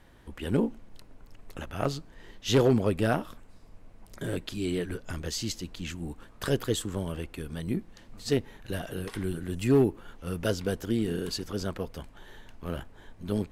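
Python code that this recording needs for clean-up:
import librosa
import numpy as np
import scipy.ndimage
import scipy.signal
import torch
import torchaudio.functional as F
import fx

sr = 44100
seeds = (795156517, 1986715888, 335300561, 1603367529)

y = fx.fix_declip(x, sr, threshold_db=-15.0)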